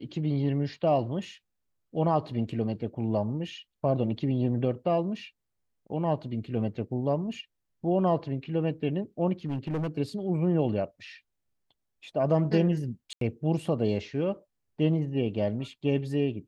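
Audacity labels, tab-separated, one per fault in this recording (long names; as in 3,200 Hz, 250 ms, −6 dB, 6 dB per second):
9.450000	9.890000	clipping −26.5 dBFS
13.130000	13.210000	drop-out 83 ms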